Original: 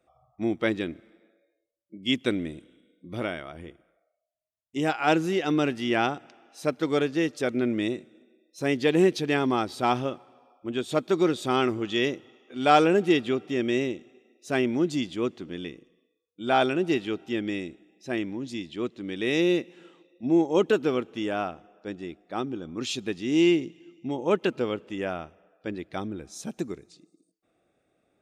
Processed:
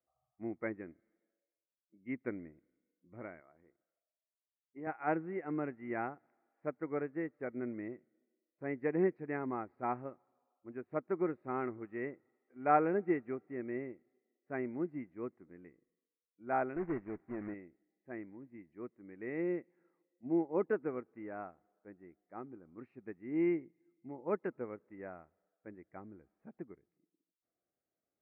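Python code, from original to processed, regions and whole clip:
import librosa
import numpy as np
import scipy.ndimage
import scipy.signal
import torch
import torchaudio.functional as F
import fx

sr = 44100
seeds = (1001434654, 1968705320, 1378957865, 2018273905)

y = fx.chain(x, sr, fx.highpass(hz=280.0, slope=6),
    fx.peak_eq(hz=4900.0, db=-8.5, octaves=2.1), at=(3.4, 4.87))
y = fx.chain(y, sr, fx.low_shelf(hz=220.0, db=11.5),
    fx.tube_stage(drive_db=17.0, bias=0.4),
    fx.quant_companded(bits=4), at=(16.76, 17.54))
y = scipy.signal.sosfilt(scipy.signal.ellip(4, 1.0, 40, 2100.0, 'lowpass', fs=sr, output='sos'), y)
y = fx.upward_expand(y, sr, threshold_db=-42.0, expansion=1.5)
y = y * 10.0 ** (-8.0 / 20.0)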